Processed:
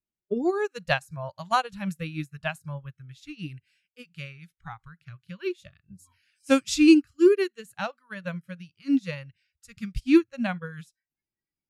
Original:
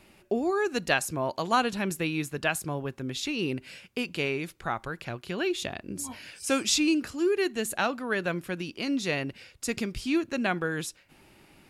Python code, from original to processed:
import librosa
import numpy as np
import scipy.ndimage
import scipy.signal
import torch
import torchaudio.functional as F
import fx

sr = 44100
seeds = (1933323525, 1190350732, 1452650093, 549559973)

y = fx.noise_reduce_blind(x, sr, reduce_db=23)
y = fx.low_shelf(y, sr, hz=320.0, db=11.0)
y = fx.upward_expand(y, sr, threshold_db=-36.0, expansion=2.5)
y = y * librosa.db_to_amplitude(6.0)